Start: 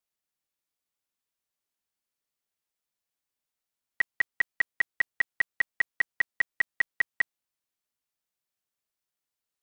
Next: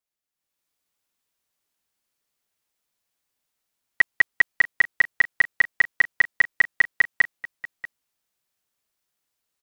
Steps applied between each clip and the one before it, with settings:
automatic gain control gain up to 10 dB
single-tap delay 637 ms −17.5 dB
level −2 dB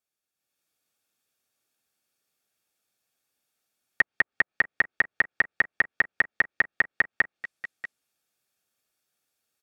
notch comb filter 1,000 Hz
treble cut that deepens with the level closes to 1,200 Hz, closed at −19 dBFS
level +2.5 dB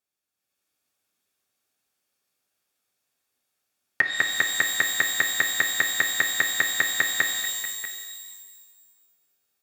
reverb with rising layers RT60 1.4 s, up +12 semitones, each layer −2 dB, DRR 5.5 dB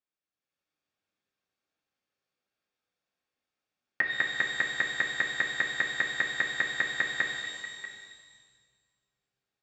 Gaussian smoothing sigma 1.6 samples
on a send at −4 dB: convolution reverb RT60 1.5 s, pre-delay 4 ms
on the sum: level −6 dB

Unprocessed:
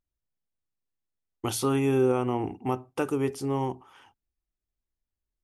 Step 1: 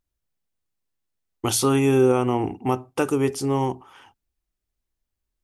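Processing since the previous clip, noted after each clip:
dynamic equaliser 6,900 Hz, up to +5 dB, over −50 dBFS, Q 0.71
level +5.5 dB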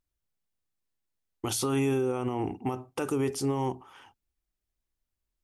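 brickwall limiter −17 dBFS, peak gain reduction 9 dB
level −3.5 dB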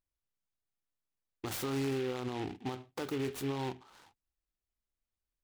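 short delay modulated by noise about 2,200 Hz, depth 0.077 ms
level −7 dB

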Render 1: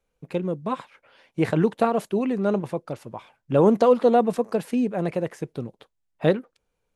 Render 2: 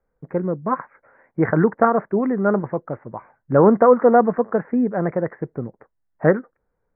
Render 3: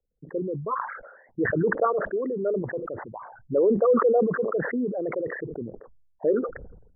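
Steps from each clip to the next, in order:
Butterworth low-pass 2,000 Hz 72 dB per octave; dynamic equaliser 1,400 Hz, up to +7 dB, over −40 dBFS, Q 1.6; level +3.5 dB
spectral envelope exaggerated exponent 3; level that may fall only so fast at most 62 dB per second; level −7.5 dB

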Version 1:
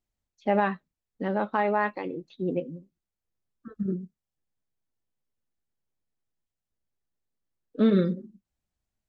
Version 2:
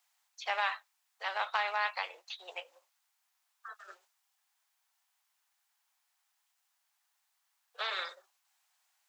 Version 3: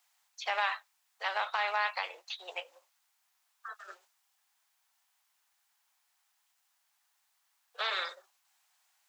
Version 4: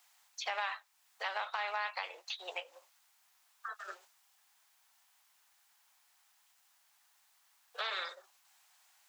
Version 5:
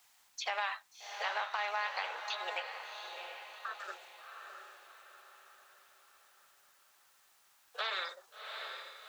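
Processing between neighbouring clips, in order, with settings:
Butterworth high-pass 760 Hz 48 dB per octave; every bin compressed towards the loudest bin 2 to 1; level −1.5 dB
brickwall limiter −23.5 dBFS, peak gain reduction 6 dB; level +3 dB
downward compressor 2 to 1, threshold −48 dBFS, peak gain reduction 12 dB; level +5.5 dB
feedback delay with all-pass diffusion 722 ms, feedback 46%, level −6 dB; surface crackle 170 per second −61 dBFS; level +1 dB

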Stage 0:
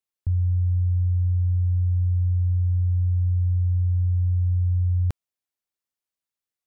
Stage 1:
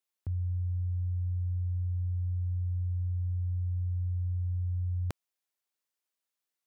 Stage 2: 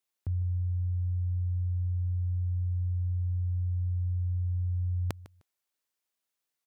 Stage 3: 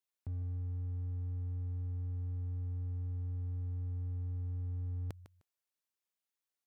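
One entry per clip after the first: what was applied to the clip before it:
high-pass filter 330 Hz 6 dB per octave; level +1.5 dB
repeating echo 153 ms, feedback 18%, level −17.5 dB; level +2 dB
hard clipping −28.5 dBFS, distortion −20 dB; level −7 dB

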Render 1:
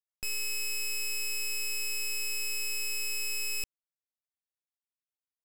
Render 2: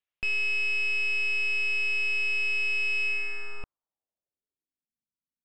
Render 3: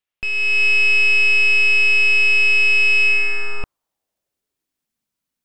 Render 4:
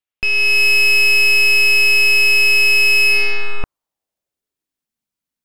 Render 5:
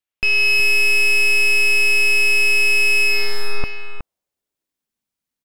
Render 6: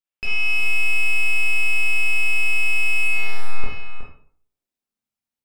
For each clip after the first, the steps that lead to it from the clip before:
low-pass filter sweep 2,800 Hz → 230 Hz, 0:03.02–0:04.91; level +3.5 dB
automatic gain control gain up to 9 dB; level +4 dB
leveller curve on the samples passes 2
brickwall limiter −11.5 dBFS, peak gain reduction 3 dB; on a send: single-tap delay 368 ms −8.5 dB
convolution reverb RT60 0.50 s, pre-delay 20 ms, DRR −3 dB; level −9 dB

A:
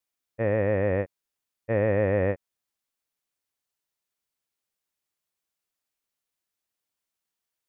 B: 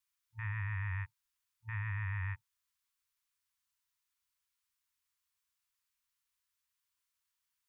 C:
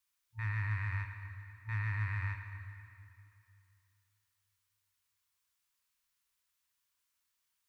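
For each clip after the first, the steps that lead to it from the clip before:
brick-wall band-stop 110–900 Hz; brickwall limiter −31 dBFS, peak gain reduction 7.5 dB
in parallel at −10 dB: hard clipping −39.5 dBFS, distortion −11 dB; on the sum: dense smooth reverb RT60 2.7 s, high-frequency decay 0.9×, DRR 5 dB

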